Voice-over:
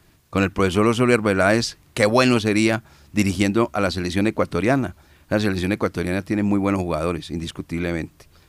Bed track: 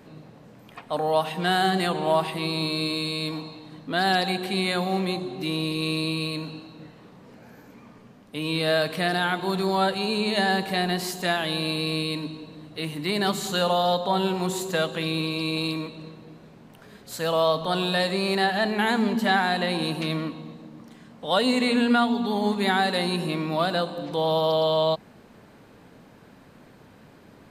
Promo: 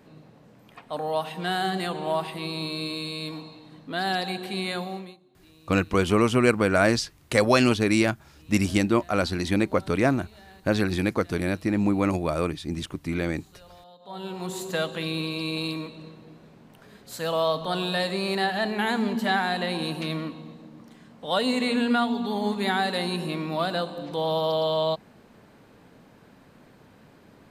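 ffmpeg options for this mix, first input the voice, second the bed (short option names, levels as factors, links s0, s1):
-filter_complex "[0:a]adelay=5350,volume=0.708[s0];[1:a]volume=11.9,afade=t=out:st=4.75:d=0.42:silence=0.0630957,afade=t=in:st=13.99:d=0.74:silence=0.0501187[s1];[s0][s1]amix=inputs=2:normalize=0"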